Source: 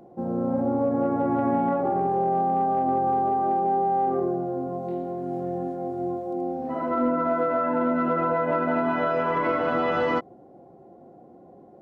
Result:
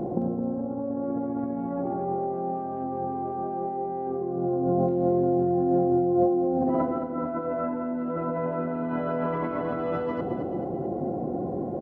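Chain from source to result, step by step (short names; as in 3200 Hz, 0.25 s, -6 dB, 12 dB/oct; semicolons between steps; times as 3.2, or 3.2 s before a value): tilt shelf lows +7.5 dB, about 940 Hz; negative-ratio compressor -32 dBFS, ratio -1; on a send: feedback echo 0.218 s, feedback 43%, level -8 dB; on the sum: gain +3.5 dB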